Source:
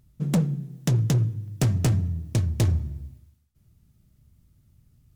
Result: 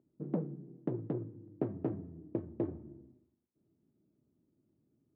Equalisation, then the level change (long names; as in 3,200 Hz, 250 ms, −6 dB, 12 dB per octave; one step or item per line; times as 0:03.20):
dynamic equaliser 300 Hz, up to −5 dB, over −34 dBFS, Q 0.77
four-pole ladder band-pass 370 Hz, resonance 55%
high-frequency loss of the air 300 metres
+8.5 dB